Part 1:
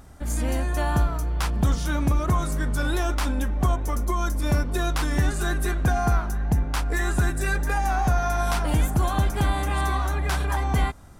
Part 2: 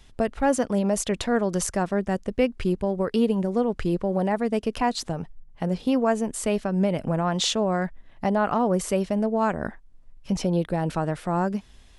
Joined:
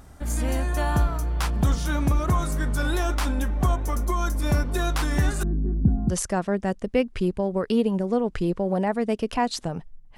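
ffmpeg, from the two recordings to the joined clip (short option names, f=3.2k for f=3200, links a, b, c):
-filter_complex "[0:a]asettb=1/sr,asplit=3[a][b][c];[a]atrim=end=5.434[d];[b]atrim=start=5.43:end=6.15,asetpts=PTS-STARTPTS,afade=t=in:d=0.004:c=qsin,afade=t=out:st=0.716:d=0.004:c=qsin,lowpass=f=230:t=q:w=2.6[e];[c]atrim=start=6.146[f];[d][e]acrossfade=d=0.004:c1=hsin:c2=qsin[g];[g][f]acrossfade=d=0.004:c1=qsin:c2=hsin,apad=whole_dur=10.17,atrim=end=10.17,atrim=end=6.15,asetpts=PTS-STARTPTS[h];[1:a]atrim=start=1.49:end=5.61,asetpts=PTS-STARTPTS[i];[h][i]acrossfade=d=0.1:c1=tri:c2=tri"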